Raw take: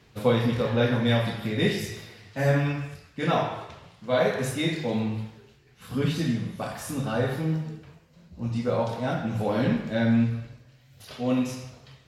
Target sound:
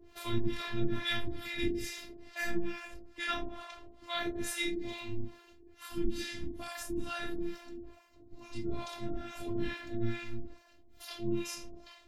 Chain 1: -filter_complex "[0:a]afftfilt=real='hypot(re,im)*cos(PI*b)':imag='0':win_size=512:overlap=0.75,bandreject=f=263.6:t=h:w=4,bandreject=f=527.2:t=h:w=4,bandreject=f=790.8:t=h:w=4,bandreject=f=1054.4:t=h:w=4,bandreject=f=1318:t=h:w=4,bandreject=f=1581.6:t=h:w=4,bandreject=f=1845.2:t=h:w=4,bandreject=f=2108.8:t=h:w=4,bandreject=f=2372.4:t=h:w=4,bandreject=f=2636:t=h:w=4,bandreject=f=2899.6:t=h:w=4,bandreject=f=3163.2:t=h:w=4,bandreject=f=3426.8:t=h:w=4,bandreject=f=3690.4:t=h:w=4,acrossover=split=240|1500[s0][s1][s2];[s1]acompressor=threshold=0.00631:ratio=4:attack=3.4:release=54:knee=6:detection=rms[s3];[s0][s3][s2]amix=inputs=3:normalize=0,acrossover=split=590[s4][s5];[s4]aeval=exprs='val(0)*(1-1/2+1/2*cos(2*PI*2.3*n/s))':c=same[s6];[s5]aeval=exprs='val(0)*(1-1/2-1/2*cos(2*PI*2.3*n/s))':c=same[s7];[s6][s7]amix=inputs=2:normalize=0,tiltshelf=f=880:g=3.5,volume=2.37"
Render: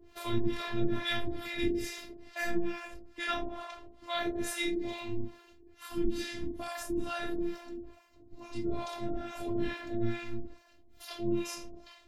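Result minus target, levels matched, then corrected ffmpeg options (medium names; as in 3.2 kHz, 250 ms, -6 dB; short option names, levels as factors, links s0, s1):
compression: peak gain reduction -7.5 dB
-filter_complex "[0:a]afftfilt=real='hypot(re,im)*cos(PI*b)':imag='0':win_size=512:overlap=0.75,bandreject=f=263.6:t=h:w=4,bandreject=f=527.2:t=h:w=4,bandreject=f=790.8:t=h:w=4,bandreject=f=1054.4:t=h:w=4,bandreject=f=1318:t=h:w=4,bandreject=f=1581.6:t=h:w=4,bandreject=f=1845.2:t=h:w=4,bandreject=f=2108.8:t=h:w=4,bandreject=f=2372.4:t=h:w=4,bandreject=f=2636:t=h:w=4,bandreject=f=2899.6:t=h:w=4,bandreject=f=3163.2:t=h:w=4,bandreject=f=3426.8:t=h:w=4,bandreject=f=3690.4:t=h:w=4,acrossover=split=240|1500[s0][s1][s2];[s1]acompressor=threshold=0.002:ratio=4:attack=3.4:release=54:knee=6:detection=rms[s3];[s0][s3][s2]amix=inputs=3:normalize=0,acrossover=split=590[s4][s5];[s4]aeval=exprs='val(0)*(1-1/2+1/2*cos(2*PI*2.3*n/s))':c=same[s6];[s5]aeval=exprs='val(0)*(1-1/2-1/2*cos(2*PI*2.3*n/s))':c=same[s7];[s6][s7]amix=inputs=2:normalize=0,tiltshelf=f=880:g=3.5,volume=2.37"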